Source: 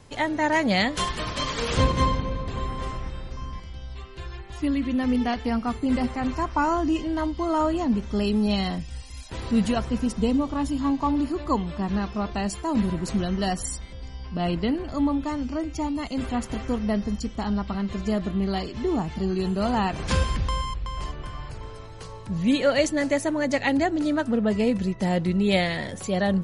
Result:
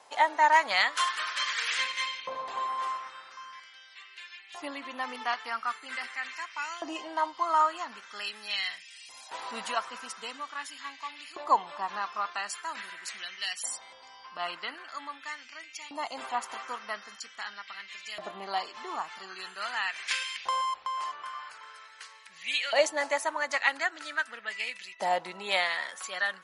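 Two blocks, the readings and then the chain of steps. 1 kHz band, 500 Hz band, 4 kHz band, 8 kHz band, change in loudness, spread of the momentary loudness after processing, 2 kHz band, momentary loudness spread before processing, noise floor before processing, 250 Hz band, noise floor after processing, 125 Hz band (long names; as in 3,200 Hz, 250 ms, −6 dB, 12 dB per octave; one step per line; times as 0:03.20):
−0.5 dB, −9.5 dB, −0.5 dB, −2.0 dB, −6.0 dB, 17 LU, +1.5 dB, 14 LU, −39 dBFS, −26.5 dB, −52 dBFS, below −35 dB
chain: harmonic generator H 7 −40 dB, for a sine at −8 dBFS
auto-filter high-pass saw up 0.44 Hz 740–2,500 Hz
level −2 dB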